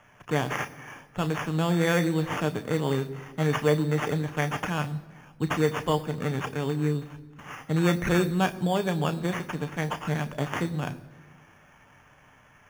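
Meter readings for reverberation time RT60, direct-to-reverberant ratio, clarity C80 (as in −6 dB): 1.5 s, 8.0 dB, 18.0 dB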